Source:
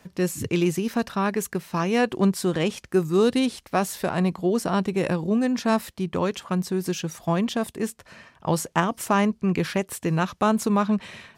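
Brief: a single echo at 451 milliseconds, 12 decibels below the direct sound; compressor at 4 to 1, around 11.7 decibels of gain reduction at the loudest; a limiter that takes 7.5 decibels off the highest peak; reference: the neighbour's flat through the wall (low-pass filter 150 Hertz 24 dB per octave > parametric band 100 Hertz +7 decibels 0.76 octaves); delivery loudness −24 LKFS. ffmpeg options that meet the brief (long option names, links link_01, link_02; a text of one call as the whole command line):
ffmpeg -i in.wav -af "acompressor=threshold=-30dB:ratio=4,alimiter=limit=-23.5dB:level=0:latency=1,lowpass=frequency=150:width=0.5412,lowpass=frequency=150:width=1.3066,equalizer=frequency=100:width_type=o:width=0.76:gain=7,aecho=1:1:451:0.251,volume=20.5dB" out.wav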